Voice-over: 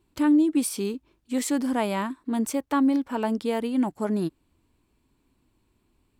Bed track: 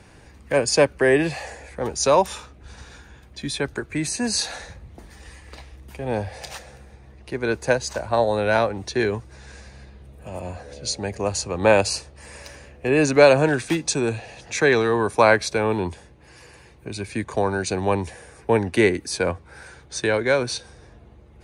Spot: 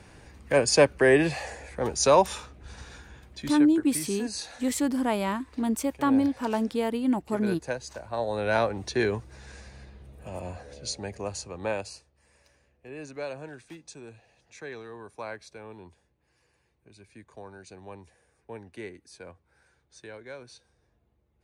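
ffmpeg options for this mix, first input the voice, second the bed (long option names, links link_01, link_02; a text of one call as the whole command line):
ffmpeg -i stem1.wav -i stem2.wav -filter_complex "[0:a]adelay=3300,volume=-1dB[link_01];[1:a]volume=6.5dB,afade=type=out:start_time=3.22:duration=0.44:silence=0.316228,afade=type=in:start_time=8.12:duration=0.59:silence=0.375837,afade=type=out:start_time=10.22:duration=1.85:silence=0.112202[link_02];[link_01][link_02]amix=inputs=2:normalize=0" out.wav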